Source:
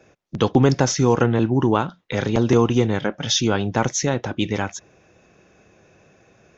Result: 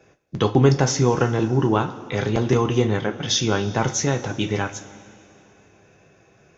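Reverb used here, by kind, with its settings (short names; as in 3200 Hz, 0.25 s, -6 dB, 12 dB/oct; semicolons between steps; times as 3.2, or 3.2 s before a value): two-slope reverb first 0.23 s, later 2.8 s, from -18 dB, DRR 4.5 dB; gain -2 dB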